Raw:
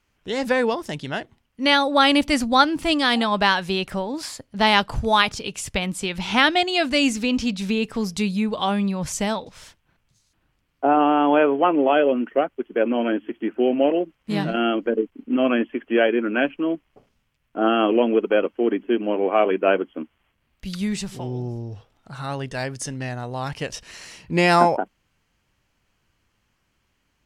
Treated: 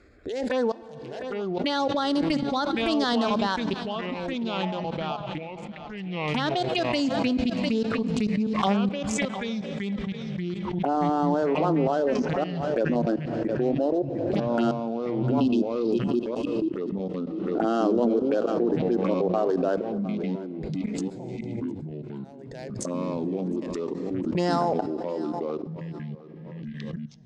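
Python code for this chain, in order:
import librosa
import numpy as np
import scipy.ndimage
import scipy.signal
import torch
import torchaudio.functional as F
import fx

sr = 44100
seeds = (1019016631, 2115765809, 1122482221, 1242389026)

y = fx.wiener(x, sr, points=15)
y = scipy.signal.sosfilt(scipy.signal.butter(4, 9100.0, 'lowpass', fs=sr, output='sos'), y)
y = fx.spec_erase(y, sr, start_s=14.72, length_s=2.22, low_hz=380.0, high_hz=2500.0)
y = scipy.signal.sosfilt(scipy.signal.butter(2, 50.0, 'highpass', fs=sr, output='sos'), y)
y = fx.low_shelf(y, sr, hz=150.0, db=-2.0)
y = fx.level_steps(y, sr, step_db=23)
y = fx.auto_wah(y, sr, base_hz=650.0, top_hz=2900.0, q=6.5, full_db=-20.5, direction='down', at=(3.86, 6.28))
y = fx.env_phaser(y, sr, low_hz=160.0, high_hz=2400.0, full_db=-20.5)
y = fx.rev_plate(y, sr, seeds[0], rt60_s=2.2, hf_ratio=0.85, predelay_ms=0, drr_db=17.5)
y = fx.echo_pitch(y, sr, ms=677, semitones=-4, count=2, db_per_echo=-6.0)
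y = fx.echo_feedback(y, sr, ms=704, feedback_pct=18, wet_db=-18.5)
y = fx.pre_swell(y, sr, db_per_s=27.0)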